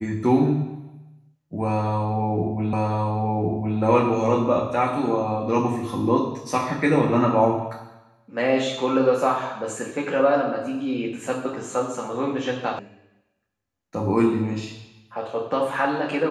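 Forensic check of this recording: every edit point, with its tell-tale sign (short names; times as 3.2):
2.73 repeat of the last 1.06 s
12.79 sound cut off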